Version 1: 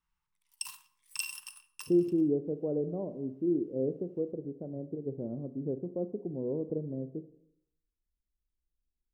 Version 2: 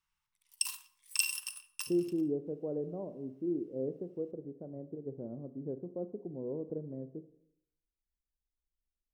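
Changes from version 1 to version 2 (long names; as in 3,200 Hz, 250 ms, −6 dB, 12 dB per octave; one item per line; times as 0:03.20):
background: remove high-pass filter 130 Hz
master: add tilt shelving filter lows −6 dB, about 1,200 Hz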